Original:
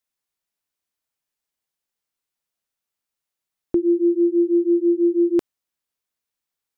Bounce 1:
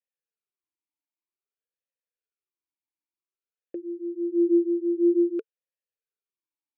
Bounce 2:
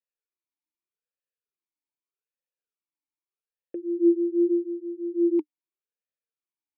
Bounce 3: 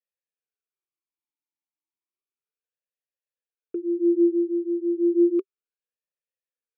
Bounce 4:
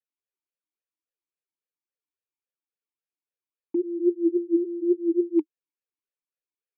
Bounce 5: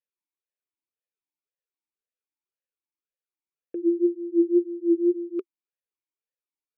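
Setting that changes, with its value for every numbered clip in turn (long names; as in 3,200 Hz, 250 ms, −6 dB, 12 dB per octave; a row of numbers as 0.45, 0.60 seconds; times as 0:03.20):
formant filter swept between two vowels, speed: 0.52, 0.82, 0.32, 3.6, 1.9 Hertz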